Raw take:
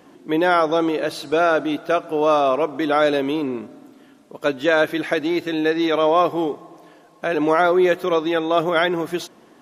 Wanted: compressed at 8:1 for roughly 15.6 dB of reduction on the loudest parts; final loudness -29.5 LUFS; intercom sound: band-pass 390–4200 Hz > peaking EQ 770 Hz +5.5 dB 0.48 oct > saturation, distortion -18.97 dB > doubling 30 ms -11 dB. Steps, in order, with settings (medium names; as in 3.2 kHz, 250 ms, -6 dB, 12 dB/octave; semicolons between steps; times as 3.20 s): compression 8:1, threshold -29 dBFS; band-pass 390–4200 Hz; peaking EQ 770 Hz +5.5 dB 0.48 oct; saturation -23.5 dBFS; doubling 30 ms -11 dB; trim +5 dB